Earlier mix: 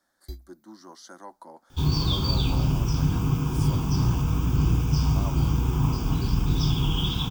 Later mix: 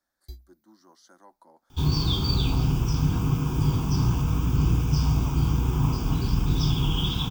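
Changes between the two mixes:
speech −10.0 dB
first sound −3.0 dB

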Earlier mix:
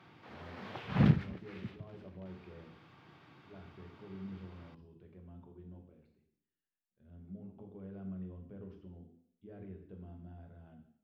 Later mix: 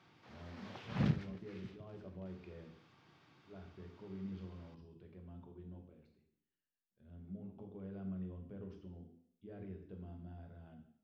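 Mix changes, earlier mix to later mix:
background −7.5 dB
master: add parametric band 6,100 Hz +9 dB 1.2 octaves

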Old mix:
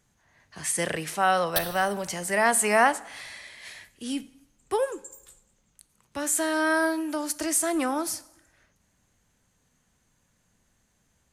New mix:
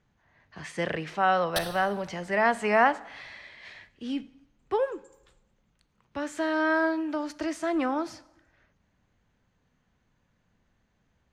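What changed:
speech: add high-frequency loss of the air 210 metres
background: add low-pass filter 8,600 Hz 12 dB per octave

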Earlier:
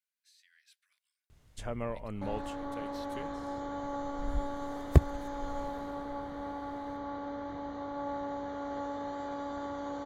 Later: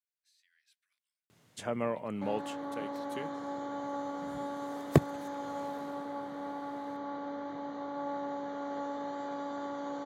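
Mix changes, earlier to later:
speech −6.5 dB
first sound +4.0 dB
master: add high-pass filter 140 Hz 24 dB per octave

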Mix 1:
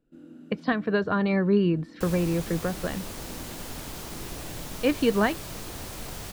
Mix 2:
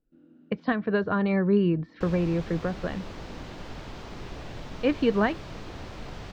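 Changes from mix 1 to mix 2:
first sound −8.5 dB
master: add high-frequency loss of the air 190 metres

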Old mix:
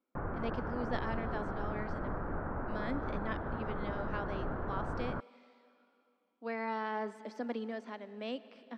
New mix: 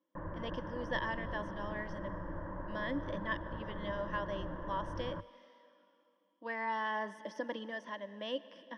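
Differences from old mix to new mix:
background −7.0 dB
master: add EQ curve with evenly spaced ripples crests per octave 1.2, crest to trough 15 dB

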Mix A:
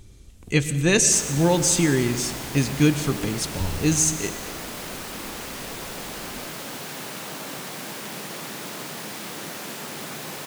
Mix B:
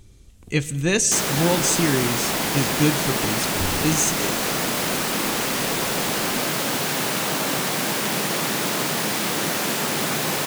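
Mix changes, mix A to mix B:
speech: send −8.0 dB
background +11.0 dB

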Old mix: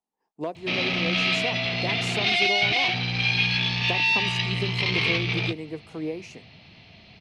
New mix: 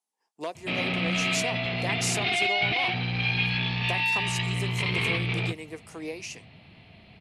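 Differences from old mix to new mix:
speech: add spectral tilt +4 dB per octave
background: add high-frequency loss of the air 250 metres

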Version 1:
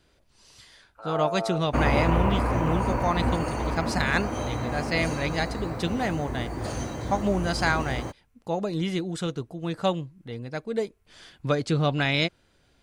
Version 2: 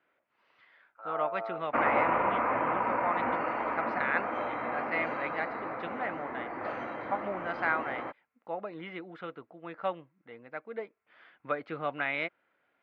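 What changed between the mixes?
speech −6.0 dB
master: add loudspeaker in its box 400–2,400 Hz, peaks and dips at 400 Hz −5 dB, 1,300 Hz +5 dB, 2,100 Hz +4 dB

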